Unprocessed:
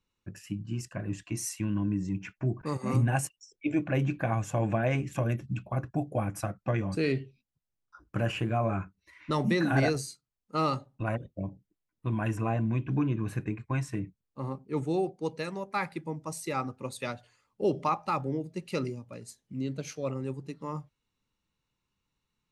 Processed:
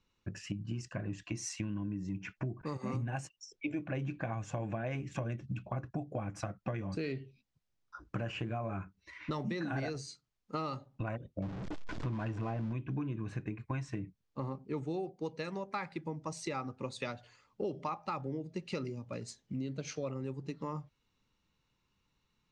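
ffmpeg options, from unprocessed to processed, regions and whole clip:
ffmpeg -i in.wav -filter_complex "[0:a]asettb=1/sr,asplit=3[link_01][link_02][link_03];[link_01]atrim=end=11.424[link_04];[link_02]atrim=start=11.42:end=12.73,asetpts=PTS-STARTPTS,afade=type=in:duration=0.004:curve=qsin,afade=type=out:start_time=1.306:duration=0.004:curve=qsin,aeval=exprs='val(0)+0.5*0.02*sgn(val(0))':channel_layout=same,lowpass=frequency=2100:poles=1[link_05];[link_03]atrim=start=12.726[link_06];[link_04][link_05]acrossfade=duration=0.004:curve1=hsin:curve2=qsin[link_07];[link_07][link_06]acrossfade=duration=0.004:curve1=qsin:curve2=hsin,lowpass=frequency=6700:width=0.5412,lowpass=frequency=6700:width=1.3066,acompressor=threshold=-40dB:ratio=5,volume=4.5dB" out.wav

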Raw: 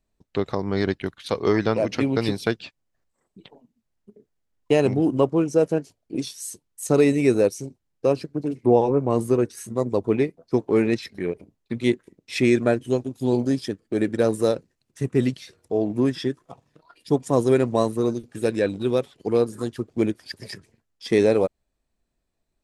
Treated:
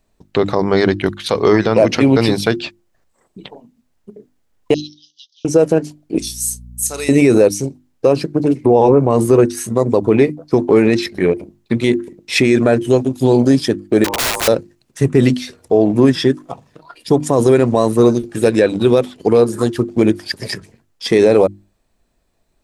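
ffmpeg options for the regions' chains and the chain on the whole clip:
ffmpeg -i in.wav -filter_complex "[0:a]asettb=1/sr,asplit=3[link_01][link_02][link_03];[link_01]atrim=end=4.744[link_04];[link_02]atrim=start=4.74:end=5.45,asetpts=PTS-STARTPTS,afade=type=in:duration=0.004:curve=qsin,afade=type=out:start_time=0.706:duration=0.004:curve=qsin,asuperpass=centerf=4500:order=12:qfactor=1.6,asplit=2[link_05][link_06];[link_06]adelay=13,volume=-11dB[link_07];[link_05][link_07]amix=inputs=2:normalize=0,atrim=end_sample=31311[link_08];[link_03]atrim=start=5.446[link_09];[link_04][link_08]acrossfade=duration=0.004:curve1=hsin:curve2=qsin[link_10];[link_10][link_09]acrossfade=duration=0.004:curve1=qsin:curve2=hsin,asettb=1/sr,asplit=3[link_11][link_12][link_13];[link_11]atrim=end=6.184[link_14];[link_12]atrim=start=6.18:end=7.09,asetpts=PTS-STARTPTS,afade=type=in:duration=0.004:curve=qsin,afade=type=out:start_time=0.906:duration=0.004:curve=qsin,aderivative,aeval=exprs='val(0)+0.00398*(sin(2*PI*60*n/s)+sin(2*PI*2*60*n/s)/2+sin(2*PI*3*60*n/s)/3+sin(2*PI*4*60*n/s)/4+sin(2*PI*5*60*n/s)/5)':channel_layout=same,asplit=2[link_15][link_16];[link_16]adelay=32,volume=-14dB[link_17];[link_15][link_17]amix=inputs=2:normalize=0,atrim=end_sample=40131[link_18];[link_13]atrim=start=7.086[link_19];[link_14][link_18]acrossfade=duration=0.004:curve1=hsin:curve2=qsin[link_20];[link_20][link_19]acrossfade=duration=0.004:curve1=qsin:curve2=hsin,asettb=1/sr,asplit=3[link_21][link_22][link_23];[link_21]atrim=end=14.044[link_24];[link_22]atrim=start=14.04:end=14.48,asetpts=PTS-STARTPTS,afade=type=in:duration=0.004:curve=qsin,afade=type=out:start_time=0.436:duration=0.004:curve=qsin,aeval=exprs='val(0)*sin(2*PI*700*n/s)':channel_layout=same,aeval=exprs='(mod(17.8*val(0)+1,2)-1)/17.8':channel_layout=same[link_25];[link_23]atrim=start=14.476[link_26];[link_24][link_25]acrossfade=duration=0.004:curve1=hsin:curve2=qsin[link_27];[link_27][link_26]acrossfade=duration=0.004:curve1=qsin:curve2=hsin,equalizer=frequency=790:width_type=o:width=1.7:gain=2,bandreject=frequency=50:width_type=h:width=6,bandreject=frequency=100:width_type=h:width=6,bandreject=frequency=150:width_type=h:width=6,bandreject=frequency=200:width_type=h:width=6,bandreject=frequency=250:width_type=h:width=6,bandreject=frequency=300:width_type=h:width=6,bandreject=frequency=350:width_type=h:width=6,alimiter=level_in=13.5dB:limit=-1dB:release=50:level=0:latency=1,volume=-1dB" out.wav

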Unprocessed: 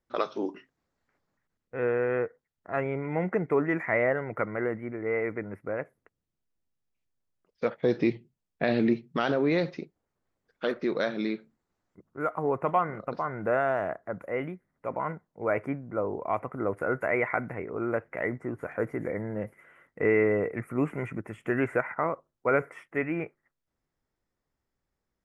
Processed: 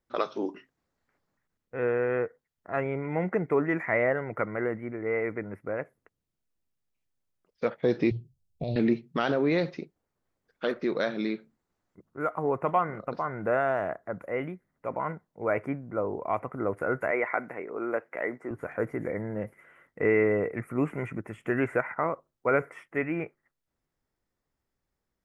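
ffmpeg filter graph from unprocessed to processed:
ffmpeg -i in.wav -filter_complex "[0:a]asettb=1/sr,asplit=3[link_01][link_02][link_03];[link_01]atrim=end=8.114[link_04];[link_02]atrim=start=8.11:end=8.76,asetpts=PTS-STARTPTS,afade=type=in:duration=0.004:curve=qsin,afade=type=out:start_time=0.646:duration=0.004:curve=qsin,lowshelf=frequency=160:width_type=q:width=1.5:gain=12.5,acompressor=threshold=-30dB:ratio=2:attack=3.2:release=140:knee=1:detection=peak,asuperstop=centerf=1600:order=4:qfactor=0.56[link_05];[link_03]atrim=start=8.756[link_06];[link_04][link_05]acrossfade=duration=0.004:curve1=hsin:curve2=qsin[link_07];[link_07][link_06]acrossfade=duration=0.004:curve1=qsin:curve2=hsin,asettb=1/sr,asplit=3[link_08][link_09][link_10];[link_08]atrim=end=17.114[link_11];[link_09]atrim=start=17.11:end=18.51,asetpts=PTS-STARTPTS,afade=type=in:duration=0.004:curve=qsin,afade=type=out:start_time=1.396:duration=0.004:curve=qsin,acrossover=split=2600[link_12][link_13];[link_13]acompressor=threshold=-45dB:ratio=4:attack=1:release=60[link_14];[link_12][link_14]amix=inputs=2:normalize=0,highpass=290[link_15];[link_10]atrim=start=18.506[link_16];[link_11][link_15]acrossfade=duration=0.004:curve1=hsin:curve2=qsin[link_17];[link_17][link_16]acrossfade=duration=0.004:curve1=qsin:curve2=hsin" out.wav

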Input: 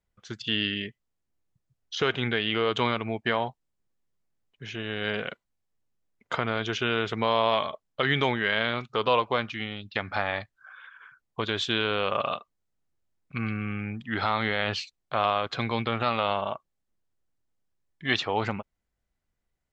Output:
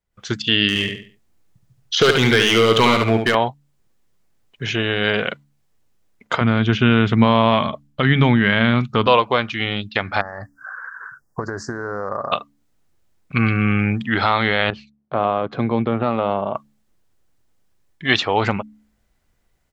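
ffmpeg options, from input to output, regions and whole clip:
ffmpeg -i in.wav -filter_complex "[0:a]asettb=1/sr,asplit=3[link_01][link_02][link_03];[link_01]atrim=end=0.684[link_04];[link_02]atrim=start=0.68:end=3.35,asetpts=PTS-STARTPTS,afade=type=in:duration=0.004:curve=qsin,afade=type=out:start_time=2.666:duration=0.004:curve=qsin,asoftclip=type=hard:threshold=-21dB,aecho=1:1:71|142|213|284:0.501|0.145|0.0421|0.0122,atrim=end_sample=117747[link_05];[link_03]atrim=start=3.346[link_06];[link_04][link_05]acrossfade=duration=0.004:curve1=hsin:curve2=qsin[link_07];[link_07][link_06]acrossfade=duration=0.004:curve1=qsin:curve2=hsin,asettb=1/sr,asplit=3[link_08][link_09][link_10];[link_08]atrim=end=6.414[link_11];[link_09]atrim=start=6.41:end=9.07,asetpts=PTS-STARTPTS,afade=type=in:duration=0.004:curve=qsin,afade=type=out:start_time=2.656:duration=0.004:curve=qsin,acrossover=split=3600[link_12][link_13];[link_13]acompressor=threshold=-49dB:ratio=4:attack=1:release=60[link_14];[link_12][link_14]amix=inputs=2:normalize=0,lowshelf=frequency=310:width_type=q:width=1.5:gain=9[link_15];[link_10]atrim=start=9.066[link_16];[link_11][link_15]acrossfade=duration=0.004:curve1=hsin:curve2=qsin[link_17];[link_17][link_16]acrossfade=duration=0.004:curve1=qsin:curve2=hsin,asettb=1/sr,asplit=3[link_18][link_19][link_20];[link_18]atrim=end=10.214[link_21];[link_19]atrim=start=10.21:end=12.32,asetpts=PTS-STARTPTS,afade=type=in:duration=0.004:curve=qsin,afade=type=out:start_time=2.106:duration=0.004:curve=qsin,acompressor=threshold=-34dB:ratio=12:attack=3.2:release=140:knee=1:detection=peak,asuperstop=centerf=3000:order=12:qfactor=0.97[link_22];[link_20]atrim=start=12.316[link_23];[link_21][link_22]acrossfade=duration=0.004:curve1=hsin:curve2=qsin[link_24];[link_24][link_23]acrossfade=duration=0.004:curve1=qsin:curve2=hsin,asettb=1/sr,asplit=3[link_25][link_26][link_27];[link_25]atrim=end=14.704[link_28];[link_26]atrim=start=14.7:end=16.55,asetpts=PTS-STARTPTS,afade=type=in:duration=0.004:curve=qsin,afade=type=out:start_time=1.846:duration=0.004:curve=qsin,bandpass=frequency=180:width_type=q:width=0.63,lowshelf=frequency=120:gain=-11[link_29];[link_27]atrim=start=16.546[link_30];[link_28][link_29]acrossfade=duration=0.004:curve1=hsin:curve2=qsin[link_31];[link_31][link_30]acrossfade=duration=0.004:curve1=qsin:curve2=hsin,dynaudnorm=framelen=110:gausssize=3:maxgain=16dB,bandreject=frequency=71.53:width_type=h:width=4,bandreject=frequency=143.06:width_type=h:width=4,bandreject=frequency=214.59:width_type=h:width=4,bandreject=frequency=286.12:width_type=h:width=4,volume=-1dB" out.wav

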